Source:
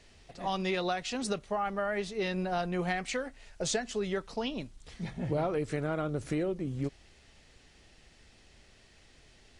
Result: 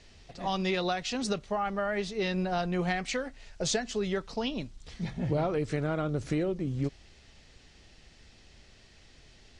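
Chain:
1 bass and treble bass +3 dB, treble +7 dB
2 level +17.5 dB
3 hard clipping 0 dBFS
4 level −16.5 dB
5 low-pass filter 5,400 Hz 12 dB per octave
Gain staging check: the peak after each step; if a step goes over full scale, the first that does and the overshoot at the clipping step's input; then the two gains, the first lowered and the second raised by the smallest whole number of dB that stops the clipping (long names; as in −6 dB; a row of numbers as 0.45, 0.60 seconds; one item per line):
−14.5, +3.0, 0.0, −16.5, −17.0 dBFS
step 2, 3.0 dB
step 2 +14.5 dB, step 4 −13.5 dB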